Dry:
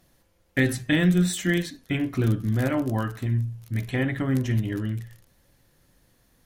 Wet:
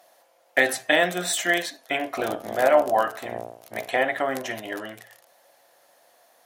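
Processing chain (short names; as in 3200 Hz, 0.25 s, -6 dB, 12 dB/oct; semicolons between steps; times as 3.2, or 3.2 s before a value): 2.17–3.97 octaver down 2 oct, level +3 dB; resonant high-pass 670 Hz, resonance Q 4.6; gain +5 dB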